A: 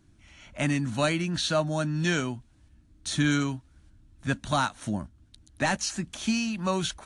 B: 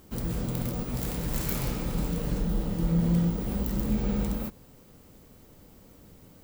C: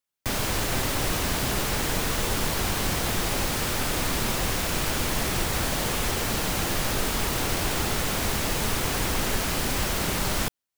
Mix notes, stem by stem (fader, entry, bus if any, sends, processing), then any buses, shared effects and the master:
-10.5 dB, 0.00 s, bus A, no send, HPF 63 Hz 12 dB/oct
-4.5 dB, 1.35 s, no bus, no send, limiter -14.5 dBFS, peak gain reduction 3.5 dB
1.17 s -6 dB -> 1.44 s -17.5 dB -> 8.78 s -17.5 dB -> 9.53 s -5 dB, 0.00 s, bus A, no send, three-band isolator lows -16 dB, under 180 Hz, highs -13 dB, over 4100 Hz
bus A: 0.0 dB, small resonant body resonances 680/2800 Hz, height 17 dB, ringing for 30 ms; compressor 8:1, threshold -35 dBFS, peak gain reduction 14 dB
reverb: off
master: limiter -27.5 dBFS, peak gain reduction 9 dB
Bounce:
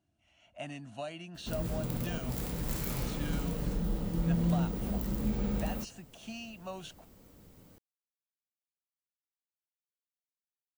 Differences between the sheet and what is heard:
stem A -10.5 dB -> -18.0 dB; stem C: muted; master: missing limiter -27.5 dBFS, peak gain reduction 9 dB

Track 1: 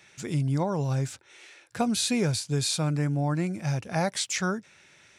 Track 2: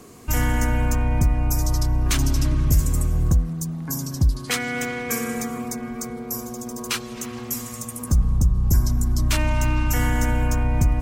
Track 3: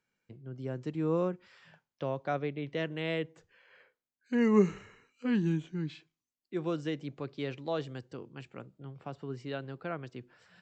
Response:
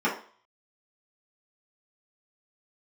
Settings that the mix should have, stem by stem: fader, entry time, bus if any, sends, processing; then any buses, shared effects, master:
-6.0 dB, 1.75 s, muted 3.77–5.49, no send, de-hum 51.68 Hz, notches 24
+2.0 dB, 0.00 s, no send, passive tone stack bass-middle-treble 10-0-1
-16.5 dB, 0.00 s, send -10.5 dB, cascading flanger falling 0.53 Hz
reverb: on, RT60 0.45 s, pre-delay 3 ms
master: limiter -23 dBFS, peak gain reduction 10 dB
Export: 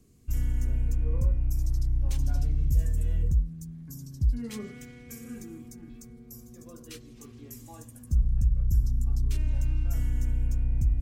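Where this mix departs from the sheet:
stem 1: muted; master: missing limiter -23 dBFS, peak gain reduction 10 dB

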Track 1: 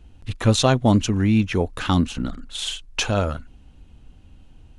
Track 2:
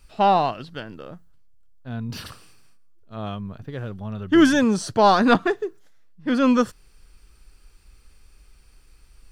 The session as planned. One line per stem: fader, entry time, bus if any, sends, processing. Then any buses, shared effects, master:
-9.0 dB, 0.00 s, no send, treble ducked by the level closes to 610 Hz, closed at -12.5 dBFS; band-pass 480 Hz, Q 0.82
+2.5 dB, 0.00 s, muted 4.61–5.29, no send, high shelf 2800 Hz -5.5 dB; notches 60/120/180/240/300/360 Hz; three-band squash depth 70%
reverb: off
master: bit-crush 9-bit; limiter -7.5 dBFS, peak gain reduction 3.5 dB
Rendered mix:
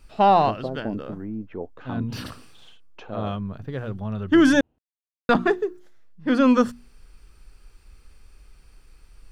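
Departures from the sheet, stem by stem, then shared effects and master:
stem 2: missing three-band squash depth 70%; master: missing bit-crush 9-bit

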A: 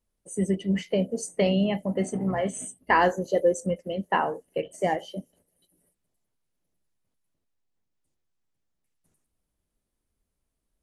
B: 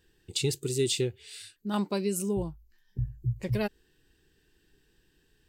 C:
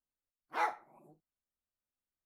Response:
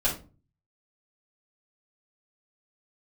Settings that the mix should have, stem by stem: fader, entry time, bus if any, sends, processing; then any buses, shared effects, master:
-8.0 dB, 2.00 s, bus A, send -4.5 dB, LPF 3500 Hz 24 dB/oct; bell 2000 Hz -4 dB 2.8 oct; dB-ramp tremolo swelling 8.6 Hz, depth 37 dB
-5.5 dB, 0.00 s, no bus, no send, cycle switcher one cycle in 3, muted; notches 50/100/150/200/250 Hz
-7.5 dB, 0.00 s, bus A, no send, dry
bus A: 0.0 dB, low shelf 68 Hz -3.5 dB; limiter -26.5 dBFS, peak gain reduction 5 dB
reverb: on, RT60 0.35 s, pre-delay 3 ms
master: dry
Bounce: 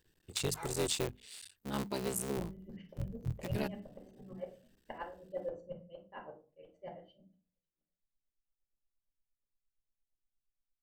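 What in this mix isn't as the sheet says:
stem A -8.0 dB -> -19.5 dB; stem C -7.5 dB -> -14.5 dB; master: extra high shelf 7600 Hz +6 dB

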